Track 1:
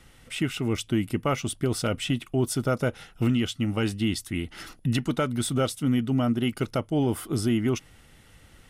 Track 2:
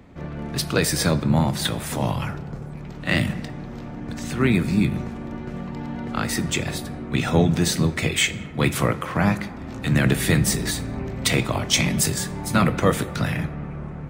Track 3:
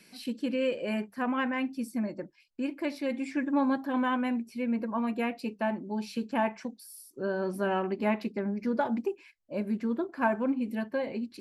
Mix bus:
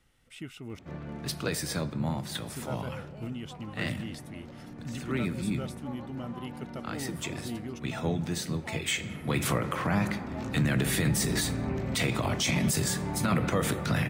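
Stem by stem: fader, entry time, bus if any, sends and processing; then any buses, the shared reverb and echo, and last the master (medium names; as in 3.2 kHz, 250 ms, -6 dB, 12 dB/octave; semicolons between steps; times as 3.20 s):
-14.5 dB, 0.00 s, muted 0.79–2.46 s, no send, none
-1.5 dB, 0.70 s, no send, high-pass 62 Hz; auto duck -10 dB, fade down 1.80 s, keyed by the first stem
-14.5 dB, 2.30 s, no send, static phaser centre 710 Hz, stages 4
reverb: none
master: peak limiter -18 dBFS, peak gain reduction 11.5 dB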